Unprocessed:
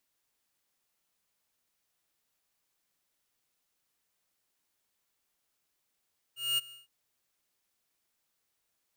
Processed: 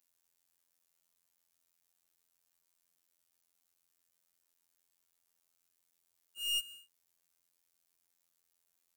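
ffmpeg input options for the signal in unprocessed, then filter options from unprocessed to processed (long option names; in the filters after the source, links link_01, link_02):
-f lavfi -i "aevalsrc='0.0422*(2*lt(mod(2850*t,1),0.5)-1)':duration=0.512:sample_rate=44100,afade=type=in:duration=0.219,afade=type=out:start_time=0.219:duration=0.022:silence=0.0794,afade=type=out:start_time=0.36:duration=0.152"
-filter_complex "[0:a]acrossover=split=170|1900|5400[link_01][link_02][link_03][link_04];[link_04]acontrast=64[link_05];[link_01][link_02][link_03][link_05]amix=inputs=4:normalize=0,afftfilt=real='hypot(re,im)*cos(PI*b)':imag='0':win_size=2048:overlap=0.75,aeval=exprs='(tanh(14.1*val(0)+0.35)-tanh(0.35))/14.1':channel_layout=same"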